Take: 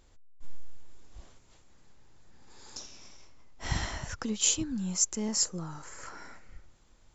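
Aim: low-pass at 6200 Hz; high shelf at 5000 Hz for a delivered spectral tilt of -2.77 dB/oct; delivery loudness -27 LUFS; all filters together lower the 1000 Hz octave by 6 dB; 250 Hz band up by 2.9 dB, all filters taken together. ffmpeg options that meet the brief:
-af "lowpass=6.2k,equalizer=f=250:t=o:g=4,equalizer=f=1k:t=o:g=-8.5,highshelf=f=5k:g=4.5,volume=3.5dB"

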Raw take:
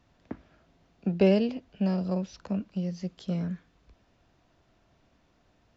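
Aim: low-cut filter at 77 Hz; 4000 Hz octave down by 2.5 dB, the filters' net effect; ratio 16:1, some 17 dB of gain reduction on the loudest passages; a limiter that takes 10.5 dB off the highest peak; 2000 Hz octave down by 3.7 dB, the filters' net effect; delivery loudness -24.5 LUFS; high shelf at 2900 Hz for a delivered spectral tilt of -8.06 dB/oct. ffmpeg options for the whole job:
-af "highpass=77,equalizer=f=2k:t=o:g=-5.5,highshelf=f=2.9k:g=6,equalizer=f=4k:t=o:g=-6.5,acompressor=threshold=-33dB:ratio=16,volume=19dB,alimiter=limit=-14.5dB:level=0:latency=1"

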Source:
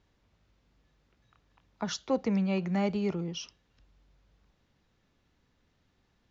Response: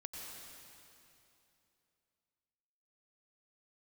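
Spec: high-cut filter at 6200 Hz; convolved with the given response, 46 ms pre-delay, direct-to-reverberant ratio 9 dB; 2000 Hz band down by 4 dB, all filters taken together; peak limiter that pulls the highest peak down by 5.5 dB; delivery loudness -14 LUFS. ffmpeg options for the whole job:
-filter_complex "[0:a]lowpass=6.2k,equalizer=f=2k:t=o:g=-5,alimiter=limit=-23dB:level=0:latency=1,asplit=2[a][b];[1:a]atrim=start_sample=2205,adelay=46[c];[b][c]afir=irnorm=-1:irlink=0,volume=-7dB[d];[a][d]amix=inputs=2:normalize=0,volume=18.5dB"

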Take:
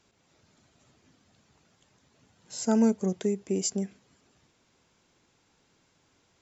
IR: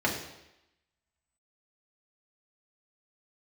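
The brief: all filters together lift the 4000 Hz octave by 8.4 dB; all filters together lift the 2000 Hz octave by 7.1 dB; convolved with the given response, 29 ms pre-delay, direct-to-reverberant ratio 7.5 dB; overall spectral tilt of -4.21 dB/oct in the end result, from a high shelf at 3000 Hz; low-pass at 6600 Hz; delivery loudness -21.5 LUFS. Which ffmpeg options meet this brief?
-filter_complex "[0:a]lowpass=6.6k,equalizer=f=2k:t=o:g=6,highshelf=f=3k:g=7.5,equalizer=f=4k:t=o:g=4.5,asplit=2[a][b];[1:a]atrim=start_sample=2205,adelay=29[c];[b][c]afir=irnorm=-1:irlink=0,volume=-19dB[d];[a][d]amix=inputs=2:normalize=0,volume=4dB"

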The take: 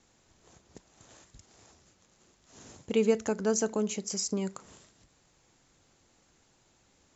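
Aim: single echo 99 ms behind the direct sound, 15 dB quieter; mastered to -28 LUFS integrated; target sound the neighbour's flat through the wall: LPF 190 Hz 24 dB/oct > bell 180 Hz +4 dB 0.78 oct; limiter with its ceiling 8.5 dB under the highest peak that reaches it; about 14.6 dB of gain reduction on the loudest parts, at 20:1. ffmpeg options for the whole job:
-af "acompressor=threshold=-34dB:ratio=20,alimiter=level_in=9dB:limit=-24dB:level=0:latency=1,volume=-9dB,lowpass=f=190:w=0.5412,lowpass=f=190:w=1.3066,equalizer=f=180:t=o:w=0.78:g=4,aecho=1:1:99:0.178,volume=21.5dB"

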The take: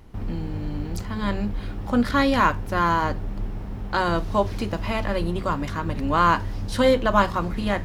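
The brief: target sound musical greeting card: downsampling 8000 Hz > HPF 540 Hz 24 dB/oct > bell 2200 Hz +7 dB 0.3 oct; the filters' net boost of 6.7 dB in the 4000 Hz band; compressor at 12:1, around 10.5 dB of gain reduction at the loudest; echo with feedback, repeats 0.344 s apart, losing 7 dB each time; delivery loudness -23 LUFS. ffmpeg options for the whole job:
-af "equalizer=f=4k:t=o:g=8,acompressor=threshold=-23dB:ratio=12,aecho=1:1:344|688|1032|1376|1720:0.447|0.201|0.0905|0.0407|0.0183,aresample=8000,aresample=44100,highpass=f=540:w=0.5412,highpass=f=540:w=1.3066,equalizer=f=2.2k:t=o:w=0.3:g=7,volume=8dB"

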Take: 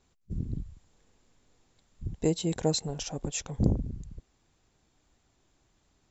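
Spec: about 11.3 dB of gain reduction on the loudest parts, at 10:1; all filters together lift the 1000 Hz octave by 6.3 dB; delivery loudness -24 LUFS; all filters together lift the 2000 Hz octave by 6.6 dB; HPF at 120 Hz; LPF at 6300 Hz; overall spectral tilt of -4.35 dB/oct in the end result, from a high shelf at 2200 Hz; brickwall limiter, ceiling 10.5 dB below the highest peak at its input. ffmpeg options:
-af "highpass=120,lowpass=6.3k,equalizer=f=1k:t=o:g=7.5,equalizer=f=2k:t=o:g=4,highshelf=f=2.2k:g=4.5,acompressor=threshold=-31dB:ratio=10,volume=18dB,alimiter=limit=-12dB:level=0:latency=1"

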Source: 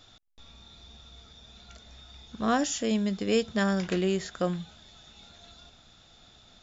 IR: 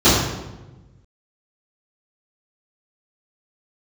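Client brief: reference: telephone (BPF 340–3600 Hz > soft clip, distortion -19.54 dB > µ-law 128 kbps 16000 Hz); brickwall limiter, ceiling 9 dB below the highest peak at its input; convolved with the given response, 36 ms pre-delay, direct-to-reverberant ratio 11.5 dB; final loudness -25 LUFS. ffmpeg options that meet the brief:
-filter_complex "[0:a]alimiter=limit=-22.5dB:level=0:latency=1,asplit=2[a][b];[1:a]atrim=start_sample=2205,adelay=36[c];[b][c]afir=irnorm=-1:irlink=0,volume=-37dB[d];[a][d]amix=inputs=2:normalize=0,highpass=340,lowpass=3.6k,asoftclip=threshold=-24dB,volume=11.5dB" -ar 16000 -c:a pcm_mulaw

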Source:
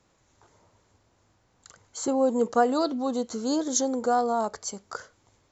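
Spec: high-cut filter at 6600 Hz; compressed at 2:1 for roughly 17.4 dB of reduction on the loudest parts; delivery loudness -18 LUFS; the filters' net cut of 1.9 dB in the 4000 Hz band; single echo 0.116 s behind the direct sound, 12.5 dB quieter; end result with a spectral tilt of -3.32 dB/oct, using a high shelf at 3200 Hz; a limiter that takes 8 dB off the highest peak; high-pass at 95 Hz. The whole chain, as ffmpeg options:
-af "highpass=95,lowpass=6.6k,highshelf=f=3.2k:g=4,equalizer=f=4k:t=o:g=-4.5,acompressor=threshold=-50dB:ratio=2,alimiter=level_in=9.5dB:limit=-24dB:level=0:latency=1,volume=-9.5dB,aecho=1:1:116:0.237,volume=25dB"

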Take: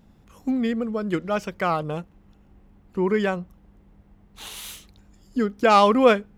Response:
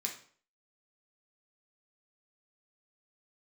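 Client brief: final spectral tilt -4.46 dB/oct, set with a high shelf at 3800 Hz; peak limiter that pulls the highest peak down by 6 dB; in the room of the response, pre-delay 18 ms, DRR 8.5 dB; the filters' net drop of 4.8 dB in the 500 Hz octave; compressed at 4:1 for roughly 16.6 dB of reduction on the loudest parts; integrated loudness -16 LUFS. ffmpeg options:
-filter_complex "[0:a]equalizer=f=500:t=o:g=-6,highshelf=f=3.8k:g=4.5,acompressor=threshold=-34dB:ratio=4,alimiter=level_in=4dB:limit=-24dB:level=0:latency=1,volume=-4dB,asplit=2[a][b];[1:a]atrim=start_sample=2205,adelay=18[c];[b][c]afir=irnorm=-1:irlink=0,volume=-9.5dB[d];[a][d]amix=inputs=2:normalize=0,volume=22dB"

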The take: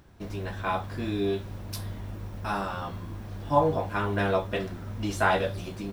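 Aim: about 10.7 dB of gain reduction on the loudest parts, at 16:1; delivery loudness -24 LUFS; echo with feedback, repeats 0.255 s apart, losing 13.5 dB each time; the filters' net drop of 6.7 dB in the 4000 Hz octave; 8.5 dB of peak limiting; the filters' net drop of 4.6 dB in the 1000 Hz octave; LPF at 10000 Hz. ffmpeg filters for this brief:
-af "lowpass=10k,equalizer=f=1k:t=o:g=-5.5,equalizer=f=4k:t=o:g=-8.5,acompressor=threshold=-29dB:ratio=16,alimiter=level_in=3dB:limit=-24dB:level=0:latency=1,volume=-3dB,aecho=1:1:255|510:0.211|0.0444,volume=13.5dB"

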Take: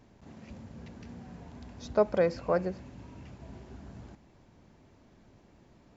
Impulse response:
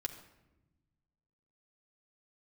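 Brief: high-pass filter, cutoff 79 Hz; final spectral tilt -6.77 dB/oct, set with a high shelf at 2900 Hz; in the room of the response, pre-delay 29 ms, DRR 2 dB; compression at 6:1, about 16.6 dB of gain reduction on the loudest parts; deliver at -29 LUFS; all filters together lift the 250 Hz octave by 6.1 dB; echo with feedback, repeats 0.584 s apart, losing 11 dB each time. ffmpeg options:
-filter_complex "[0:a]highpass=79,equalizer=f=250:t=o:g=9,highshelf=f=2.9k:g=4.5,acompressor=threshold=-36dB:ratio=6,aecho=1:1:584|1168|1752:0.282|0.0789|0.0221,asplit=2[a][b];[1:a]atrim=start_sample=2205,adelay=29[c];[b][c]afir=irnorm=-1:irlink=0,volume=-2dB[d];[a][d]amix=inputs=2:normalize=0,volume=11.5dB"

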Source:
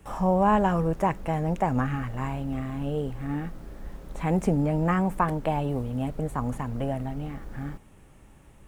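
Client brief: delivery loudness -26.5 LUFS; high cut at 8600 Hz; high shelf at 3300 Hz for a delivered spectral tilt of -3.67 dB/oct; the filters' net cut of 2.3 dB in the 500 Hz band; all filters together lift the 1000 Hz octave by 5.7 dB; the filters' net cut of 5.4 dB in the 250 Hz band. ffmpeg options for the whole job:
-af "lowpass=8.6k,equalizer=f=250:t=o:g=-8,equalizer=f=500:t=o:g=-4,equalizer=f=1k:t=o:g=9,highshelf=f=3.3k:g=-3.5"

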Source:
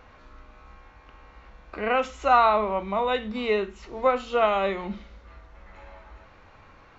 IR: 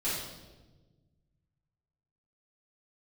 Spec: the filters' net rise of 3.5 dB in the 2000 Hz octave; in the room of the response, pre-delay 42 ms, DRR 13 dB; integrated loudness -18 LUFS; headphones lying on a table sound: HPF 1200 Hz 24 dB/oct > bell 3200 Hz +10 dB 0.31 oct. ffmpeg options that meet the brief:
-filter_complex "[0:a]equalizer=f=2k:t=o:g=4,asplit=2[a][b];[1:a]atrim=start_sample=2205,adelay=42[c];[b][c]afir=irnorm=-1:irlink=0,volume=-19.5dB[d];[a][d]amix=inputs=2:normalize=0,highpass=f=1.2k:w=0.5412,highpass=f=1.2k:w=1.3066,equalizer=f=3.2k:t=o:w=0.31:g=10,volume=9.5dB"

